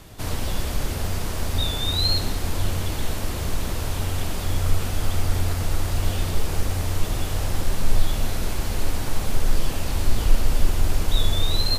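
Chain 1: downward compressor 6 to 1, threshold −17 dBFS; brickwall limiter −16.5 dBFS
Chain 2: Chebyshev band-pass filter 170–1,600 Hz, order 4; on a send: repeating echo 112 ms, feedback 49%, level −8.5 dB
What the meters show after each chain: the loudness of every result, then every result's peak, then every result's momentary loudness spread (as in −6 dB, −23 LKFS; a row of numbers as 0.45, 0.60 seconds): −30.0, −35.0 LKFS; −16.5, −21.5 dBFS; 5, 1 LU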